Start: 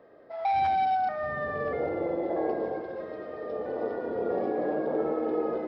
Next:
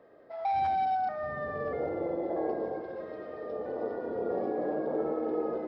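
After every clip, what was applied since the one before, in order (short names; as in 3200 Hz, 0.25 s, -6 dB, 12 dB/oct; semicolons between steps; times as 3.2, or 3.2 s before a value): dynamic EQ 2700 Hz, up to -5 dB, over -47 dBFS, Q 0.91; gain -2.5 dB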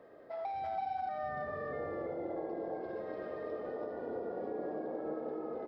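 compressor 6:1, threshold -39 dBFS, peak gain reduction 12.5 dB; echo 0.333 s -3.5 dB; gain +1 dB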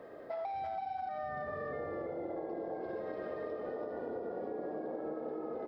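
compressor, threshold -43 dBFS, peak gain reduction 10 dB; gain +6.5 dB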